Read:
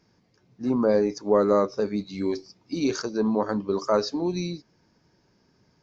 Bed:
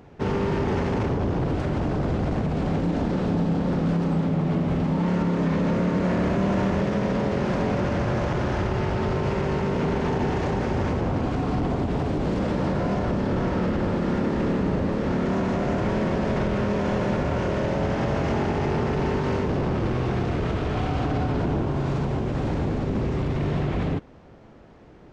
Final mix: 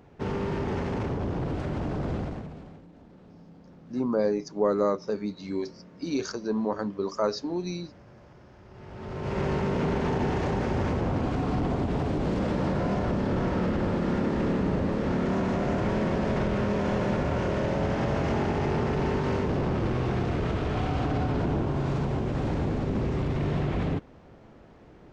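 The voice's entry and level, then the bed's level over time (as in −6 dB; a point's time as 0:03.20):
3.30 s, −4.0 dB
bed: 0:02.18 −5.5 dB
0:02.88 −27.5 dB
0:08.61 −27.5 dB
0:09.41 −2.5 dB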